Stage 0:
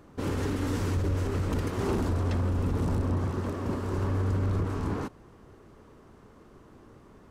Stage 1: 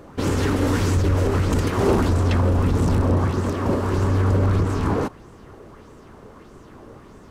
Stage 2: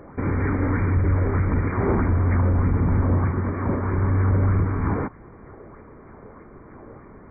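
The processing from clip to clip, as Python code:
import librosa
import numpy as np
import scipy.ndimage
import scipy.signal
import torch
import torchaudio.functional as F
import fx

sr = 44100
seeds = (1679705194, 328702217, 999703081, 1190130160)

y1 = fx.bell_lfo(x, sr, hz=1.6, low_hz=500.0, high_hz=7900.0, db=7)
y1 = F.gain(torch.from_numpy(y1), 8.5).numpy()
y2 = fx.dynamic_eq(y1, sr, hz=530.0, q=0.79, threshold_db=-35.0, ratio=4.0, max_db=-6)
y2 = fx.brickwall_lowpass(y2, sr, high_hz=2400.0)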